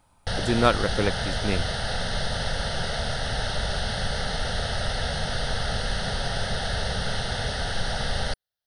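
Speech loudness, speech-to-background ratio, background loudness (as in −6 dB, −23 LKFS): −26.5 LKFS, 2.0 dB, −28.5 LKFS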